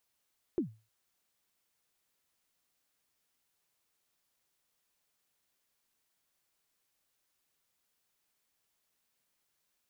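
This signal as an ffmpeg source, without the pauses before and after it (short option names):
-f lavfi -i "aevalsrc='0.0631*pow(10,-3*t/0.31)*sin(2*PI*(390*0.108/log(110/390)*(exp(log(110/390)*min(t,0.108)/0.108)-1)+110*max(t-0.108,0)))':d=0.31:s=44100"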